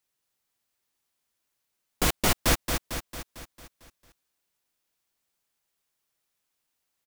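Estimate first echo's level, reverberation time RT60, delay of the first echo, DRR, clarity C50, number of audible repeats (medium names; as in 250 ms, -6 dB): -6.0 dB, no reverb, 225 ms, no reverb, no reverb, 6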